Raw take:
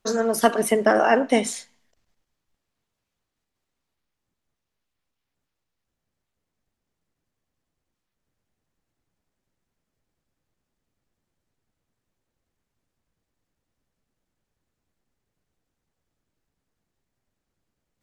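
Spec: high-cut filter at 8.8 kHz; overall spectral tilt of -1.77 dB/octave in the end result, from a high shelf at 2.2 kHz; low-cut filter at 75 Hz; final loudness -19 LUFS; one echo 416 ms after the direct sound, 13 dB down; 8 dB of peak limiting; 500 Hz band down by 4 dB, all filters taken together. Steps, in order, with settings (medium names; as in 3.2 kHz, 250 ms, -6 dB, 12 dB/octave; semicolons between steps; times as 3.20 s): high-pass 75 Hz; low-pass 8.8 kHz; peaking EQ 500 Hz -6 dB; treble shelf 2.2 kHz +9 dB; peak limiter -10 dBFS; delay 416 ms -13 dB; trim +3.5 dB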